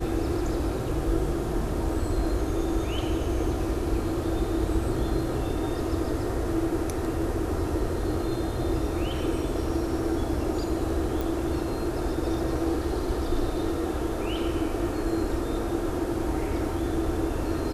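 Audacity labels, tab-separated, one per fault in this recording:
11.210000	11.210000	pop

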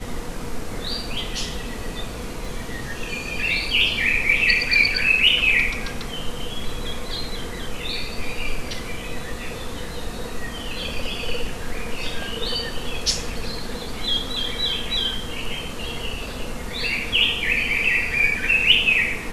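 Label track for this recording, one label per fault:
2.450000	2.450000	dropout 2.5 ms

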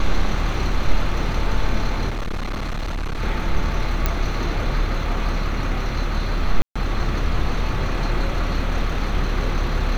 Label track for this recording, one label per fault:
2.090000	3.220000	clipped -22 dBFS
4.060000	4.060000	pop -6 dBFS
6.620000	6.750000	dropout 135 ms

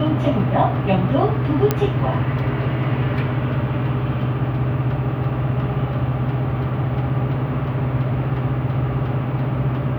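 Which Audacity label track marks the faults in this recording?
1.710000	1.710000	pop -4 dBFS

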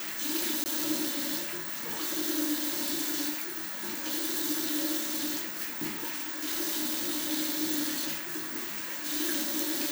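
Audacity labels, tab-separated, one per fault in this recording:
0.640000	0.660000	dropout 19 ms
5.040000	7.310000	clipped -26.5 dBFS

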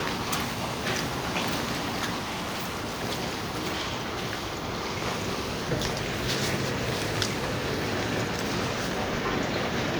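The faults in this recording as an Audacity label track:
2.170000	3.030000	clipped -29 dBFS

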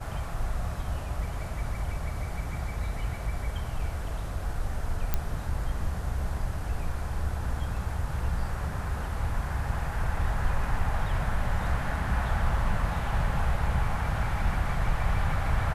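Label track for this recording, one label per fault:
5.140000	5.140000	pop -12 dBFS

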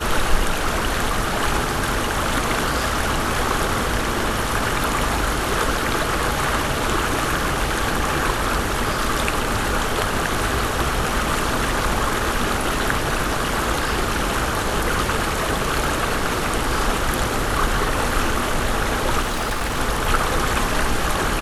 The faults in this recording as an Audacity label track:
19.210000	19.800000	clipped -19.5 dBFS

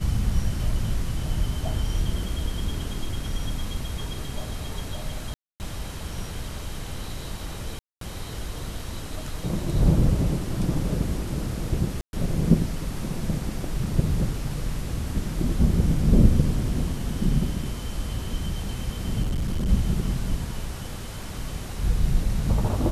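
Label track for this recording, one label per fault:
5.340000	5.600000	dropout 259 ms
7.790000	8.010000	dropout 223 ms
12.010000	12.130000	dropout 121 ms
19.220000	19.690000	clipped -22 dBFS

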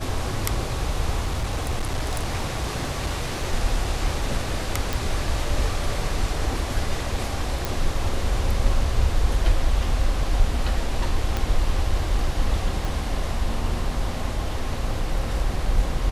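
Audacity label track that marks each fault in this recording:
1.200000	3.530000	clipped -20 dBFS
4.930000	4.930000	pop
7.650000	7.650000	pop
11.370000	11.370000	pop -11 dBFS
12.850000	12.850000	pop

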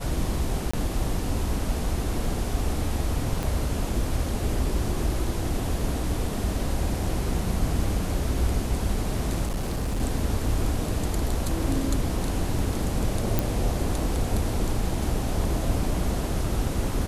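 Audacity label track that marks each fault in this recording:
0.710000	0.730000	dropout 25 ms
3.430000	3.430000	pop
9.460000	10.010000	clipped -23.5 dBFS
13.390000	13.390000	pop

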